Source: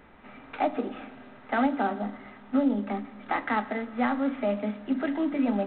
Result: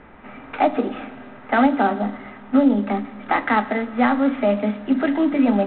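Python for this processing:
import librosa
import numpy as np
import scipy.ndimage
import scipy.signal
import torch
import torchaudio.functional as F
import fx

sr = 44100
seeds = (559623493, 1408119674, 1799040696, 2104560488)

y = fx.env_lowpass(x, sr, base_hz=2600.0, full_db=-20.5)
y = F.gain(torch.from_numpy(y), 8.5).numpy()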